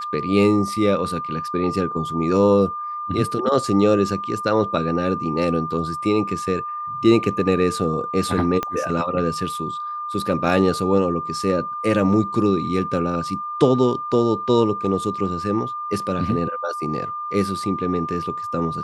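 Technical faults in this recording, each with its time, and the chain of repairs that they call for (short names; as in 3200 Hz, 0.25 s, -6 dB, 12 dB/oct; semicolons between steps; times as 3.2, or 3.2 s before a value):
tone 1200 Hz -26 dBFS
8.63 pop -10 dBFS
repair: de-click; notch 1200 Hz, Q 30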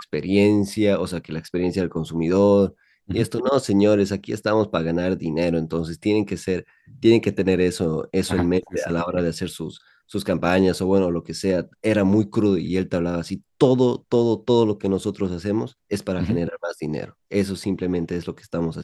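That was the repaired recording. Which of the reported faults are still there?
8.63 pop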